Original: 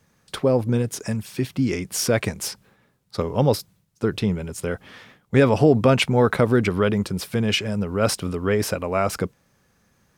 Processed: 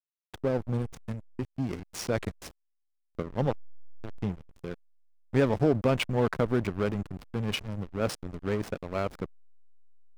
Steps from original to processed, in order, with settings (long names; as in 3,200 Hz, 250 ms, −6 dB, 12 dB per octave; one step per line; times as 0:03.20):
0:03.50–0:04.22: power curve on the samples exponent 2
slack as between gear wheels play −18 dBFS
level −7.5 dB